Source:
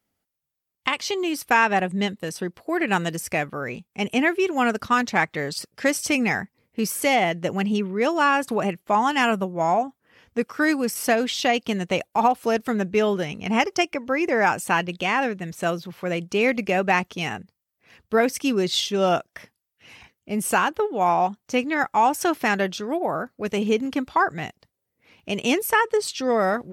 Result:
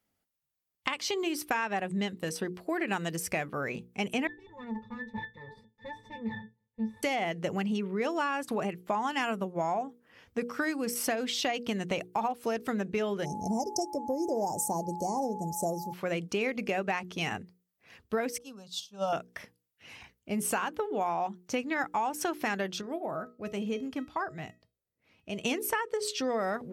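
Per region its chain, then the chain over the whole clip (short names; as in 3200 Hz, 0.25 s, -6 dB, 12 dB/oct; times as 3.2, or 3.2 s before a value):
4.27–7.03 minimum comb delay 5.6 ms + low shelf 72 Hz +7.5 dB + octave resonator A, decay 0.18 s
13.24–15.92 inverse Chebyshev band-stop 1300–3600 Hz + high shelf 4400 Hz +9 dB + whine 850 Hz -34 dBFS
18.38–19.13 fixed phaser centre 840 Hz, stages 4 + upward expander 2.5:1, over -34 dBFS
22.81–25.45 low shelf 330 Hz +5.5 dB + resonator 640 Hz, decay 0.26 s, mix 70%
whole clip: notches 60/120/180/240/300/360/420/480 Hz; compressor, threshold -25 dBFS; gain -2.5 dB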